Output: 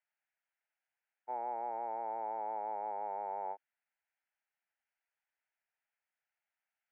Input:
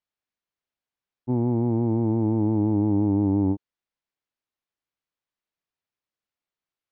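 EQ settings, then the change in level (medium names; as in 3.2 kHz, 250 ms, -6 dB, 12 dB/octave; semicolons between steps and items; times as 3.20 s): ladder high-pass 760 Hz, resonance 30%; distance through air 230 m; static phaser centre 1.1 kHz, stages 6; +13.0 dB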